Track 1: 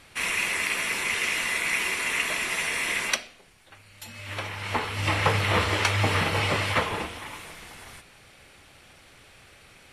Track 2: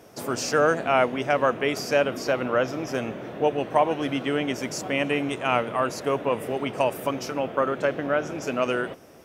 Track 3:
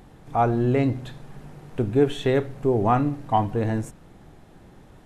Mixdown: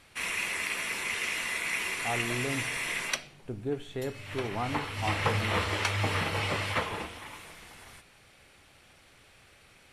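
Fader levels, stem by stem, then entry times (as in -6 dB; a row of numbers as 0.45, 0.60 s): -5.5 dB, off, -13.5 dB; 0.00 s, off, 1.70 s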